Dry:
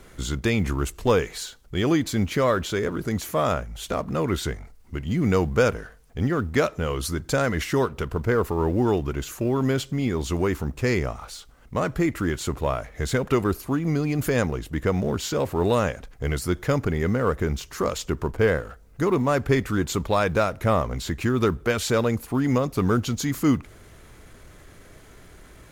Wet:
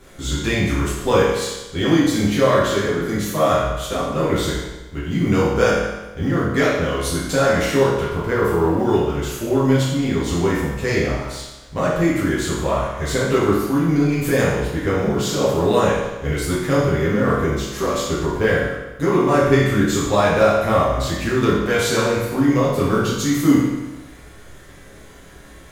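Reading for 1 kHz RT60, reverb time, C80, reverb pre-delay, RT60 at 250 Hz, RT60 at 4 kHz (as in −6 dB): 1.1 s, 1.1 s, 3.0 dB, 7 ms, 1.1 s, 1.0 s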